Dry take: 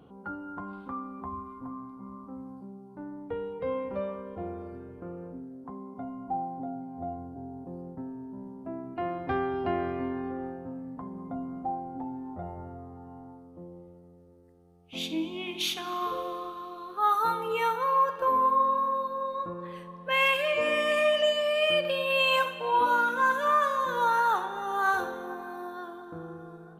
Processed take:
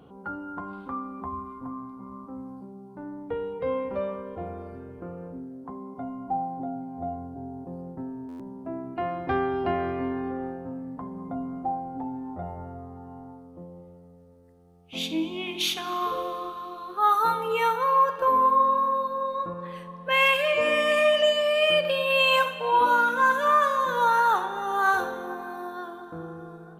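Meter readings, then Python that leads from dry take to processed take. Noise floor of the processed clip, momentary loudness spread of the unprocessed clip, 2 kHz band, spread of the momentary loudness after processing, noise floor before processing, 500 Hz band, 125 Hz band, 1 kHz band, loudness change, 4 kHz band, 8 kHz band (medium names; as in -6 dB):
-47 dBFS, 19 LU, +3.5 dB, 19 LU, -50 dBFS, +3.5 dB, +3.0 dB, +3.5 dB, +3.5 dB, +3.5 dB, +3.5 dB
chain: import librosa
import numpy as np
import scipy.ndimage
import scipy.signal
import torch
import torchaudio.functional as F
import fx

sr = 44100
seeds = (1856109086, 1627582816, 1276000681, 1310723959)

y = fx.hum_notches(x, sr, base_hz=50, count=7)
y = fx.buffer_glitch(y, sr, at_s=(8.28,), block=512, repeats=9)
y = y * librosa.db_to_amplitude(3.5)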